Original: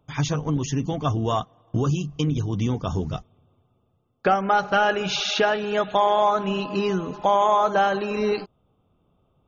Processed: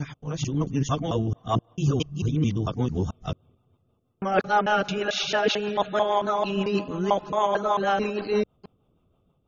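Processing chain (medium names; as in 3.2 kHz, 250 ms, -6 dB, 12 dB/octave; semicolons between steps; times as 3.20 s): time reversed locally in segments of 222 ms; level rider gain up to 5.5 dB; rotary cabinet horn 6.3 Hz; trim -4.5 dB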